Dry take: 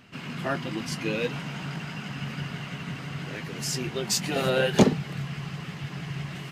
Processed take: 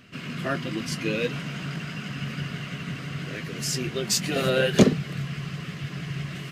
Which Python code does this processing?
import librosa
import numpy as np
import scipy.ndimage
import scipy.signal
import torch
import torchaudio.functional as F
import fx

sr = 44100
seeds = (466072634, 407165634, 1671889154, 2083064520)

y = fx.peak_eq(x, sr, hz=860.0, db=-14.5, octaves=0.29)
y = F.gain(torch.from_numpy(y), 2.0).numpy()